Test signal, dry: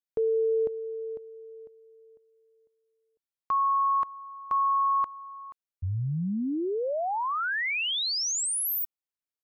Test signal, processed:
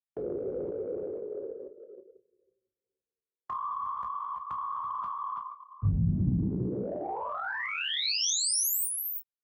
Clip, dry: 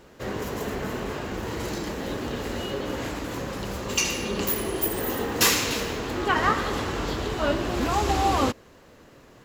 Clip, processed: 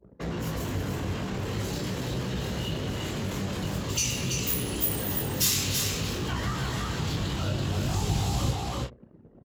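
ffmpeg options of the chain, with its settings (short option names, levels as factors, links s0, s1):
-filter_complex "[0:a]adynamicequalizer=threshold=0.00562:dfrequency=3200:dqfactor=1.3:tfrequency=3200:tqfactor=1.3:attack=5:release=100:ratio=0.375:range=3:mode=boostabove:tftype=bell,afftfilt=real='hypot(re,im)*cos(2*PI*random(0))':imag='hypot(re,im)*sin(2*PI*random(1))':win_size=512:overlap=0.75,flanger=delay=16:depth=5.5:speed=0.46,equalizer=f=130:w=0.78:g=5.5,asplit=2[s0][s1];[s1]aecho=0:1:333:0.501[s2];[s0][s2]amix=inputs=2:normalize=0,acrossover=split=180|5000[s3][s4][s5];[s4]acompressor=threshold=0.00631:ratio=6:attack=2.5:release=47:knee=2.83:detection=peak[s6];[s3][s6][s5]amix=inputs=3:normalize=0,anlmdn=0.00251,highpass=f=40:w=0.5412,highpass=f=40:w=1.3066,asplit=2[s7][s8];[s8]adelay=31,volume=0.335[s9];[s7][s9]amix=inputs=2:normalize=0,asplit=2[s10][s11];[s11]acompressor=threshold=0.00631:ratio=6:attack=4.3:release=33,volume=0.75[s12];[s10][s12]amix=inputs=2:normalize=0,volume=2.11"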